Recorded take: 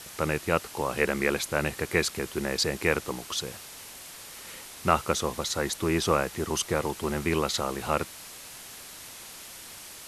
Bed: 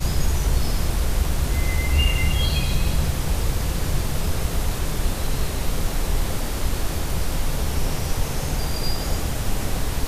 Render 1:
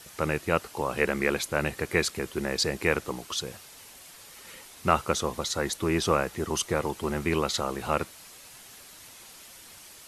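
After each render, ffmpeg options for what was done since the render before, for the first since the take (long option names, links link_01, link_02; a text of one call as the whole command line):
ffmpeg -i in.wav -af "afftdn=noise_reduction=6:noise_floor=-45" out.wav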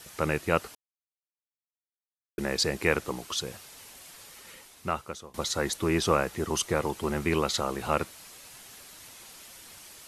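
ffmpeg -i in.wav -filter_complex "[0:a]asplit=4[link_01][link_02][link_03][link_04];[link_01]atrim=end=0.75,asetpts=PTS-STARTPTS,afade=type=out:start_time=0.746:duration=0.004:curve=hsin[link_05];[link_02]atrim=start=0.75:end=2.38,asetpts=PTS-STARTPTS,volume=0[link_06];[link_03]atrim=start=2.38:end=5.34,asetpts=PTS-STARTPTS,afade=type=in:duration=0.004:curve=hsin,afade=type=out:start_time=1.84:duration=1.12:silence=0.0668344[link_07];[link_04]atrim=start=5.34,asetpts=PTS-STARTPTS,afade=type=in:duration=0.004:curve=hsin:silence=0.0668344[link_08];[link_05][link_06][link_07][link_08]concat=n=4:v=0:a=1" out.wav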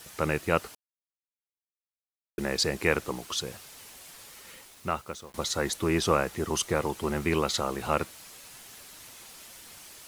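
ffmpeg -i in.wav -af "acrusher=bits=8:mix=0:aa=0.000001" out.wav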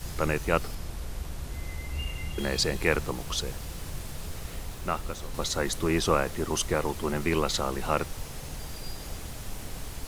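ffmpeg -i in.wav -i bed.wav -filter_complex "[1:a]volume=-14.5dB[link_01];[0:a][link_01]amix=inputs=2:normalize=0" out.wav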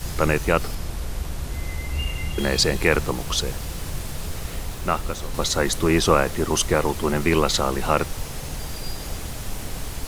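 ffmpeg -i in.wav -af "volume=7dB,alimiter=limit=-3dB:level=0:latency=1" out.wav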